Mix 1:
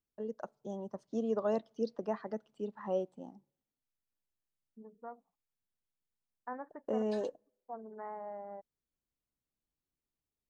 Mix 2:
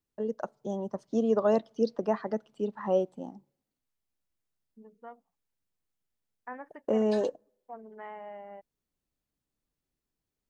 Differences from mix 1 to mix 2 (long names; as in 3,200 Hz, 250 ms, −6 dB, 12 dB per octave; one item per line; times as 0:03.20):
first voice +7.5 dB
second voice: remove low-pass filter 1,500 Hz 24 dB per octave